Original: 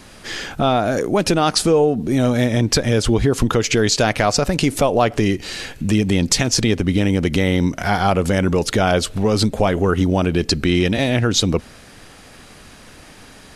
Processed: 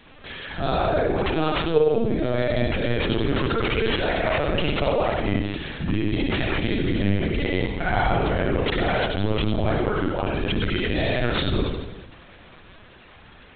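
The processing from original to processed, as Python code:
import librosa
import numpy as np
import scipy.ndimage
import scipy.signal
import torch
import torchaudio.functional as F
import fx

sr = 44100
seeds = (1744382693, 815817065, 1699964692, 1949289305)

y = fx.hum_notches(x, sr, base_hz=60, count=8)
y = fx.level_steps(y, sr, step_db=13)
y = fx.rev_spring(y, sr, rt60_s=1.2, pass_ms=(50,), chirp_ms=55, drr_db=-3.5)
y = (np.kron(y[::6], np.eye(6)[0]) * 6)[:len(y)]
y = fx.lpc_vocoder(y, sr, seeds[0], excitation='pitch_kept', order=16)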